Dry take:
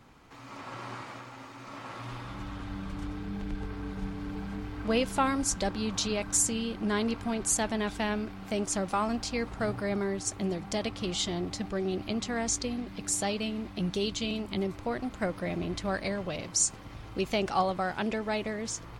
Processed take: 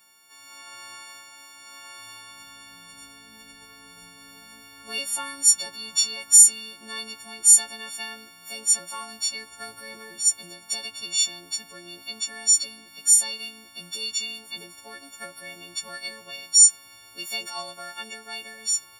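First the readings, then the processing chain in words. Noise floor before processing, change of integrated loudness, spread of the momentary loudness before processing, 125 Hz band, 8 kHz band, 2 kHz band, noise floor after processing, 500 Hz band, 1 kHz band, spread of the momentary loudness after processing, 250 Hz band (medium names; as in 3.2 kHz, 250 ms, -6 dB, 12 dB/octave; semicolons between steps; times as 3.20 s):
-46 dBFS, +12.0 dB, 13 LU, under -20 dB, +14.0 dB, +0.5 dB, -50 dBFS, -14.0 dB, -7.5 dB, 23 LU, -18.5 dB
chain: partials quantised in pitch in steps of 4 st; tilt EQ +4 dB/octave; trim -10 dB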